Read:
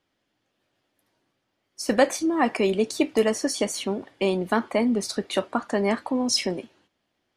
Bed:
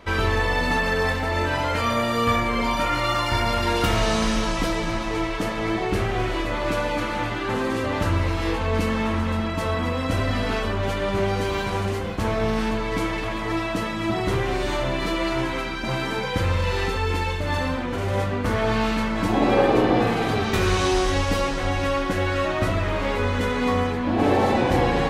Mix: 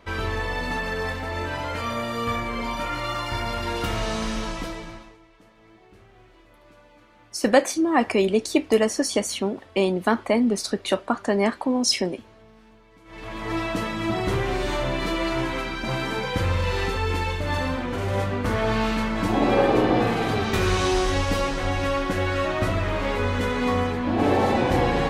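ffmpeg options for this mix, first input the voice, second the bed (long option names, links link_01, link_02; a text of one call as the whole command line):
ffmpeg -i stem1.wav -i stem2.wav -filter_complex "[0:a]adelay=5550,volume=2dB[link_01];[1:a]volume=22dB,afade=type=out:start_time=4.46:duration=0.71:silence=0.0707946,afade=type=in:start_time=13.05:duration=0.55:silence=0.0421697[link_02];[link_01][link_02]amix=inputs=2:normalize=0" out.wav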